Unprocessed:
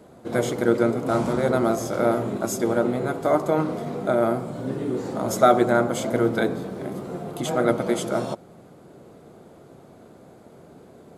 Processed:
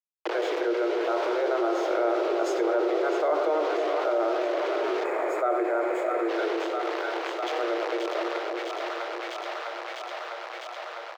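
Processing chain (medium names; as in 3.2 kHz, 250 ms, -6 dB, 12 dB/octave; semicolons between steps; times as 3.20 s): Doppler pass-by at 2.88 s, 5 m/s, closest 5.7 m; on a send: delay 93 ms -11.5 dB; on the sum: bit crusher 6-bit; steep high-pass 330 Hz 96 dB/octave; distance through air 230 m; two-band feedback delay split 660 Hz, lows 307 ms, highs 653 ms, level -9 dB; time-frequency box 5.05–6.29 s, 2.6–6.6 kHz -13 dB; level flattener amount 70%; trim -4.5 dB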